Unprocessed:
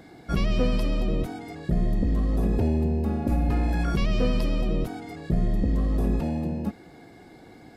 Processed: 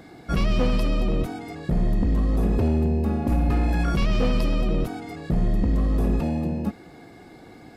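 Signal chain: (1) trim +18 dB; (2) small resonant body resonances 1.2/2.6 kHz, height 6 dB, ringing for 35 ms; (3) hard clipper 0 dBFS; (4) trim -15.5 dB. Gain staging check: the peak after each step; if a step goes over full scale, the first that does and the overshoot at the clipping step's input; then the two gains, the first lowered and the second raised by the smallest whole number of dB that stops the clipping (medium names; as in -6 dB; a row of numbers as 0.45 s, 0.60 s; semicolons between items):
+6.0 dBFS, +6.0 dBFS, 0.0 dBFS, -15.5 dBFS; step 1, 6.0 dB; step 1 +12 dB, step 4 -9.5 dB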